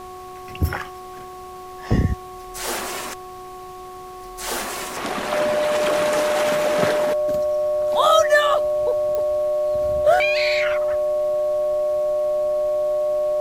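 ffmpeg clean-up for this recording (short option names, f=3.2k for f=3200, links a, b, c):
-af "adeclick=t=4,bandreject=f=368.4:t=h:w=4,bandreject=f=736.8:t=h:w=4,bandreject=f=1.1052k:t=h:w=4,bandreject=f=600:w=30,afftdn=nr=30:nf=-37"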